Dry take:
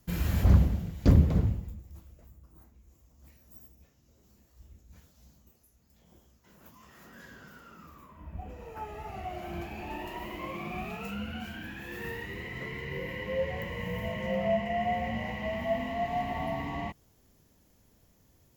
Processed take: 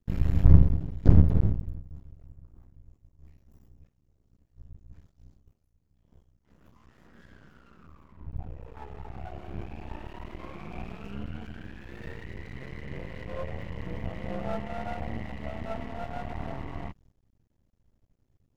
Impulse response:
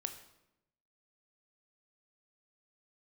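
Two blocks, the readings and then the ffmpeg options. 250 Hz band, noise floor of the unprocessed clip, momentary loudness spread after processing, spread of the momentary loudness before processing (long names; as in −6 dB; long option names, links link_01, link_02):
−0.5 dB, −65 dBFS, 23 LU, 21 LU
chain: -af "agate=range=-7dB:threshold=-60dB:ratio=16:detection=peak,aemphasis=mode=reproduction:type=bsi,aeval=exprs='max(val(0),0)':channel_layout=same,volume=-3.5dB"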